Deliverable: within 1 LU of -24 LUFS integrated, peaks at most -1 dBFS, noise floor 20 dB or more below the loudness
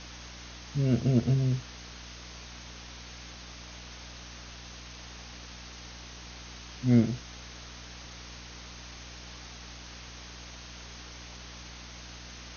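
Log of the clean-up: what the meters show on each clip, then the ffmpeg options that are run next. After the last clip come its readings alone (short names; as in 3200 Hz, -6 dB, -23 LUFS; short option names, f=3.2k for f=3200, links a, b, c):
hum 60 Hz; harmonics up to 300 Hz; hum level -45 dBFS; noise floor -46 dBFS; noise floor target -55 dBFS; loudness -35.0 LUFS; peak -10.0 dBFS; loudness target -24.0 LUFS
-> -af "bandreject=f=60:t=h:w=6,bandreject=f=120:t=h:w=6,bandreject=f=180:t=h:w=6,bandreject=f=240:t=h:w=6,bandreject=f=300:t=h:w=6"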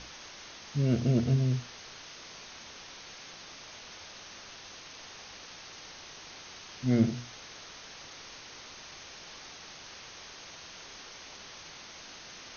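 hum none; noise floor -48 dBFS; noise floor target -57 dBFS
-> -af "afftdn=nr=9:nf=-48"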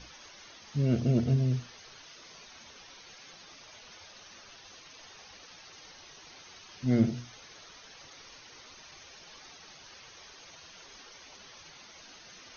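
noise floor -53 dBFS; loudness -29.0 LUFS; peak -12.0 dBFS; loudness target -24.0 LUFS
-> -af "volume=5dB"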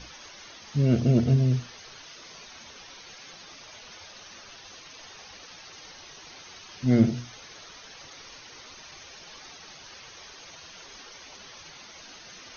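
loudness -24.0 LUFS; peak -7.0 dBFS; noise floor -48 dBFS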